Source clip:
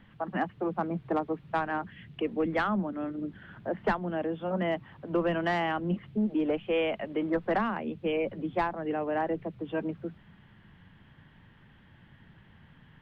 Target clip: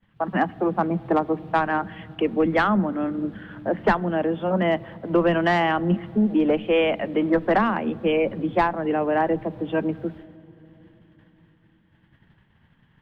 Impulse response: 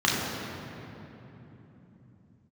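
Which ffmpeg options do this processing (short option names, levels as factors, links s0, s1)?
-filter_complex "[0:a]agate=range=0.0224:threshold=0.00501:ratio=3:detection=peak,asplit=2[s0][s1];[1:a]atrim=start_sample=2205,lowpass=2600[s2];[s1][s2]afir=irnorm=-1:irlink=0,volume=0.015[s3];[s0][s3]amix=inputs=2:normalize=0,volume=2.51"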